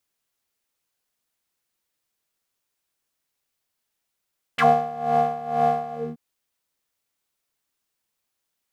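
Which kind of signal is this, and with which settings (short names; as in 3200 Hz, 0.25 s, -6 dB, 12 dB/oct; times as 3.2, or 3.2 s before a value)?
synth patch with tremolo D#3, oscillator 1 square, oscillator 2 square, interval +7 st, detune 18 cents, oscillator 2 level -3 dB, noise -7 dB, filter bandpass, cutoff 260 Hz, Q 5.6, filter envelope 3.5 oct, filter decay 0.06 s, attack 8.6 ms, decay 0.16 s, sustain -8.5 dB, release 0.23 s, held 1.35 s, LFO 2.1 Hz, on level 15 dB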